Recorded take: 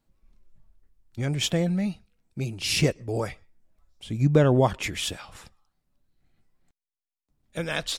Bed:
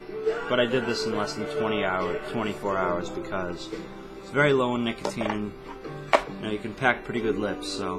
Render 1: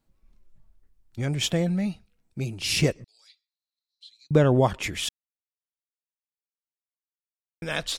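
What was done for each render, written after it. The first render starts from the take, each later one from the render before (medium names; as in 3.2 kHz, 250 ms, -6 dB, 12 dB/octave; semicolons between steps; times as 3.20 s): 3.04–4.31 s: ladder band-pass 4.2 kHz, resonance 90%; 5.09–7.62 s: mute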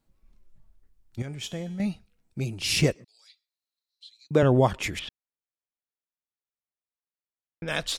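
1.22–1.80 s: feedback comb 210 Hz, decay 1 s, mix 70%; 2.94–4.43 s: Bessel high-pass 230 Hz; 4.99–7.68 s: distance through air 350 m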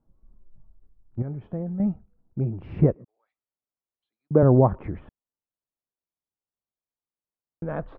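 low-pass 1.2 kHz 24 dB/octave; bass shelf 470 Hz +5 dB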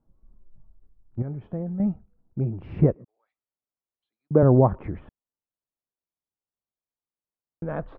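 no audible change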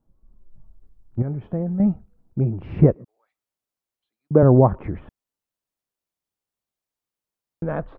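level rider gain up to 5.5 dB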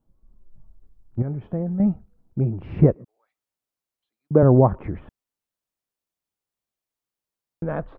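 trim -1 dB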